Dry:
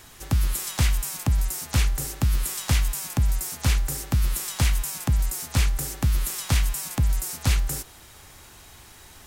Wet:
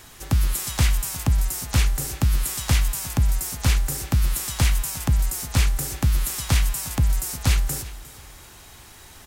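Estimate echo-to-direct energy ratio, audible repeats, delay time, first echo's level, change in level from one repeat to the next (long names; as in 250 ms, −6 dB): −17.5 dB, 2, 356 ms, −18.0 dB, −12.5 dB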